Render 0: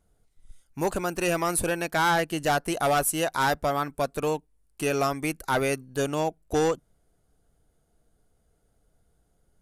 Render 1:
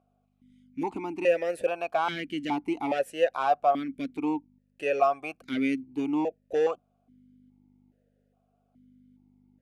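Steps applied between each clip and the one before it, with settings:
mains hum 50 Hz, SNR 20 dB
formant filter that steps through the vowels 2.4 Hz
level +8 dB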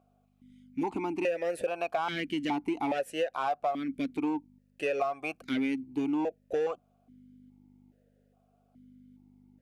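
in parallel at −8.5 dB: hard clipping −28 dBFS, distortion −6 dB
on the sum: downward compressor 6 to 1, threshold −27 dBFS, peak gain reduction 10 dB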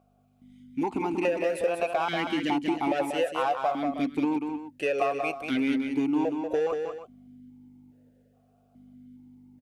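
multi-tap delay 188/316 ms −5.5/−13 dB
level +3 dB

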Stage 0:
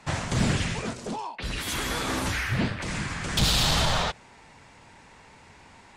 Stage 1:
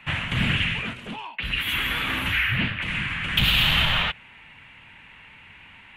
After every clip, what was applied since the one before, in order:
drawn EQ curve 160 Hz 0 dB, 280 Hz −3 dB, 390 Hz −8 dB, 740 Hz −6 dB, 2,900 Hz +13 dB, 5,100 Hz −17 dB, 8,400 Hz −13 dB, 13,000 Hz +4 dB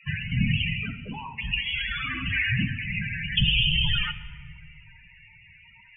in parallel at −10.5 dB: dead-zone distortion −34 dBFS
on the sum: spectral peaks only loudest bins 16
convolution reverb RT60 1.6 s, pre-delay 6 ms, DRR 10.5 dB
level −1 dB

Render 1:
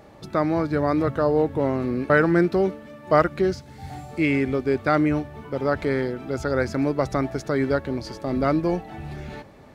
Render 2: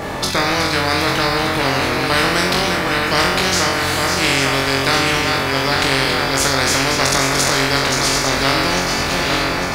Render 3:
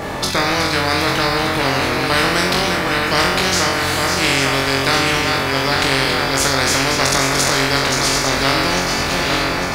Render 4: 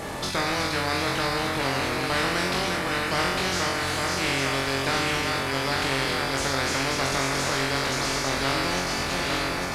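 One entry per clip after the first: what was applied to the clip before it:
feedback delay that plays each chunk backwards 426 ms, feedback 69%, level −8.5 dB; flutter between parallel walls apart 3.8 metres, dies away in 0.46 s; every bin compressed towards the loudest bin 4 to 1; level +1 dB
no processing that can be heard
linear delta modulator 64 kbit/s, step −25.5 dBFS; level −8.5 dB

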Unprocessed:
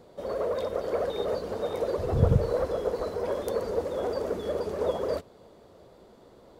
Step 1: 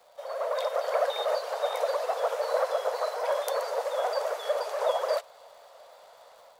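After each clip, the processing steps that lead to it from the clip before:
Butterworth high-pass 570 Hz 48 dB per octave
automatic gain control gain up to 7 dB
surface crackle 240 per second −51 dBFS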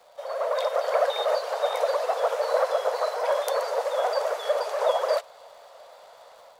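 high-shelf EQ 11,000 Hz −5 dB
level +3.5 dB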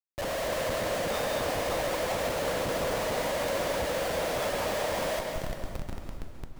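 downward compressor 6 to 1, threshold −31 dBFS, peak gain reduction 13 dB
comparator with hysteresis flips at −40 dBFS
dense smooth reverb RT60 1.9 s, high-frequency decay 0.85×, pre-delay 120 ms, DRR 2.5 dB
level +3.5 dB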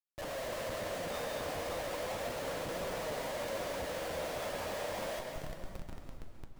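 flanger 0.35 Hz, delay 5.1 ms, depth 8.7 ms, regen +72%
level −4 dB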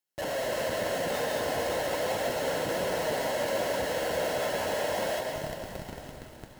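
notch comb filter 1,200 Hz
feedback echo with a high-pass in the loop 914 ms, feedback 51%, level −19 dB
feedback echo at a low word length 177 ms, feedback 80%, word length 9 bits, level −13 dB
level +8.5 dB

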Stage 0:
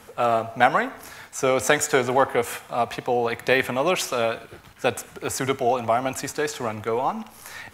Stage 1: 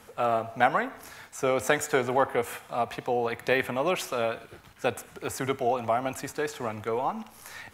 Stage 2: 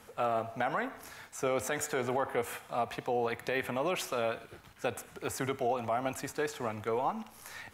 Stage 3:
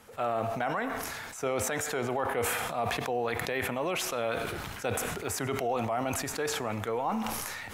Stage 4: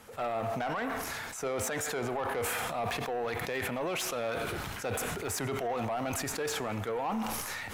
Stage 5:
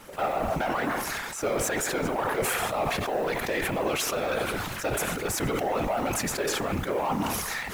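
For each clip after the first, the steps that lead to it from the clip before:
dynamic equaliser 5,900 Hz, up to −5 dB, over −39 dBFS, Q 0.74; level −4.5 dB
brickwall limiter −18 dBFS, peak gain reduction 10.5 dB; level −3 dB
level that may fall only so fast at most 23 dB per second
in parallel at +1.5 dB: brickwall limiter −24 dBFS, peak gain reduction 8.5 dB; on the sum: soft clipping −22 dBFS, distortion −14 dB; level −5 dB
one scale factor per block 5 bits; random phases in short frames; level +5.5 dB

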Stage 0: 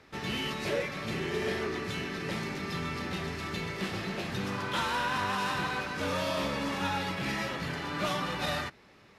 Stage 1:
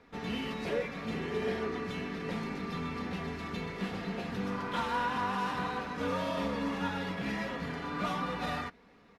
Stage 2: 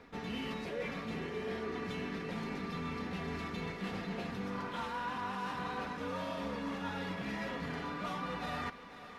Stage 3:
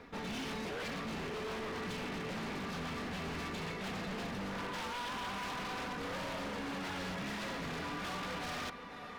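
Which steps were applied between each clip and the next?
high-shelf EQ 2,700 Hz −11 dB; comb filter 4.2 ms, depth 57%; level −1.5 dB
reversed playback; downward compressor 6 to 1, threshold −41 dBFS, peak gain reduction 12.5 dB; reversed playback; feedback echo with a high-pass in the loop 494 ms, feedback 63%, high-pass 420 Hz, level −13 dB; level +4.5 dB
wave folding −38 dBFS; level +3 dB

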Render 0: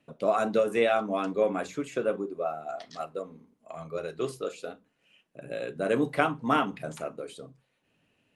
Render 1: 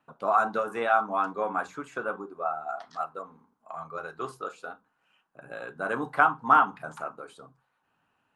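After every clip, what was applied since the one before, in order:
flat-topped bell 1,100 Hz +15 dB 1.3 octaves
level −7 dB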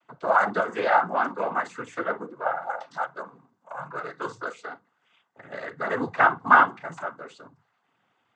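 cochlear-implant simulation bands 16
level +3.5 dB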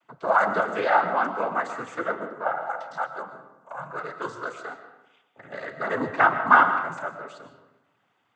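convolution reverb RT60 0.95 s, pre-delay 80 ms, DRR 9 dB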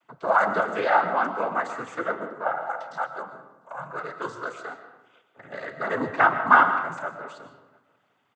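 slap from a distant wall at 120 metres, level −29 dB

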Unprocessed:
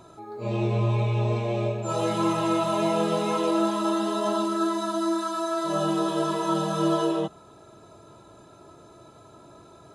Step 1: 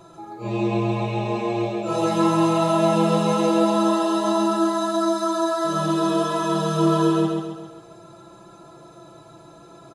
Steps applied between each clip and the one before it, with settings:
comb filter 5.9 ms, depth 75%
on a send: repeating echo 134 ms, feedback 48%, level −3.5 dB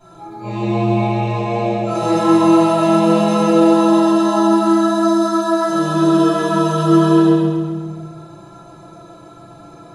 convolution reverb RT60 1.1 s, pre-delay 5 ms, DRR −12.5 dB
level −10 dB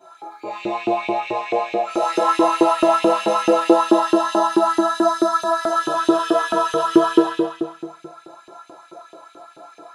auto-filter high-pass saw up 4.6 Hz 330–2,900 Hz
level −3 dB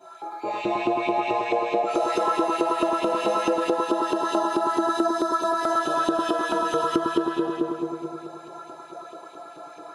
downward compressor 6 to 1, threshold −21 dBFS, peak gain reduction 13 dB
on a send: bucket-brigade delay 102 ms, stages 1,024, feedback 67%, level −6 dB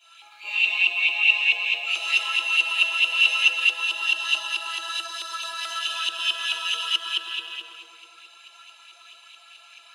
high-pass with resonance 2,800 Hz, resonance Q 12
in parallel at −10 dB: dead-zone distortion −46.5 dBFS

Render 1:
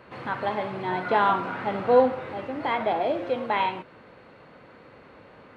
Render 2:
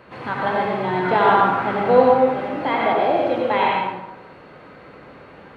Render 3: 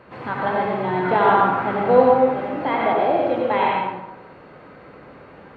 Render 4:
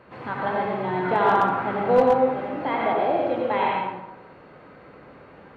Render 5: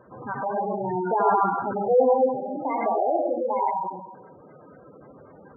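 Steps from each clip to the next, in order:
dense smooth reverb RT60 0.89 s, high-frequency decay 0.6×, pre-delay 75 ms, DRR −2 dB; level +3 dB
high-shelf EQ 3,300 Hz −8.5 dB
hard clipping −6.5 dBFS, distortion −26 dB; level −3.5 dB
gate on every frequency bin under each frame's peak −10 dB strong

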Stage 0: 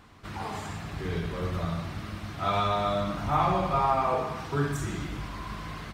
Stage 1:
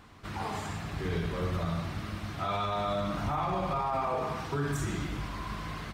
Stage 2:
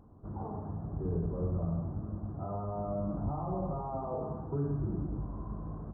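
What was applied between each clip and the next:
brickwall limiter −22.5 dBFS, peak gain reduction 9.5 dB
Gaussian smoothing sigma 11 samples

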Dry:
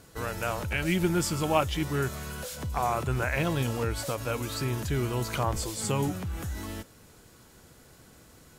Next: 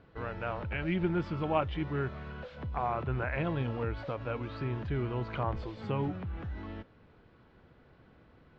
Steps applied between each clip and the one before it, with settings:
Bessel low-pass filter 2,200 Hz, order 6
level −4 dB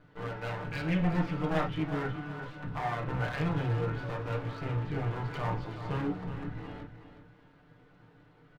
lower of the sound and its delayed copy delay 6.7 ms
repeating echo 369 ms, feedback 28%, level −10.5 dB
convolution reverb, pre-delay 6 ms, DRR 0.5 dB
level −2 dB

